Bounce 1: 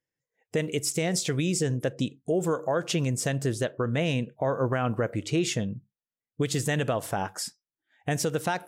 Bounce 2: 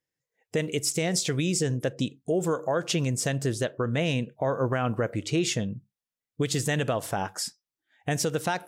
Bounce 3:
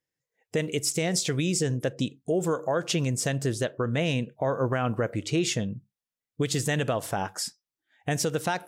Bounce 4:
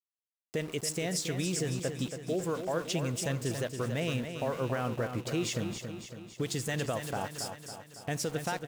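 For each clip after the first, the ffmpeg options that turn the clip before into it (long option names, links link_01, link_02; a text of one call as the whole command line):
ffmpeg -i in.wav -af "equalizer=frequency=4900:width_type=o:width=1.5:gain=2.5" out.wav
ffmpeg -i in.wav -af anull out.wav
ffmpeg -i in.wav -filter_complex "[0:a]aeval=exprs='val(0)*gte(abs(val(0)),0.015)':channel_layout=same,asplit=2[link_01][link_02];[link_02]aecho=0:1:278|556|834|1112|1390|1668|1946:0.398|0.223|0.125|0.0699|0.0392|0.0219|0.0123[link_03];[link_01][link_03]amix=inputs=2:normalize=0,volume=-6.5dB" out.wav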